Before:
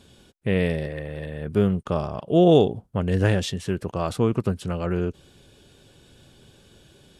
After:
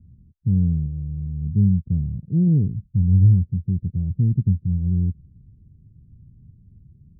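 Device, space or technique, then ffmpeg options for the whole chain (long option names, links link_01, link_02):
the neighbour's flat through the wall: -af "lowpass=frequency=180:width=0.5412,lowpass=frequency=180:width=1.3066,equalizer=frequency=82:width_type=o:width=0.87:gain=4,volume=6.5dB"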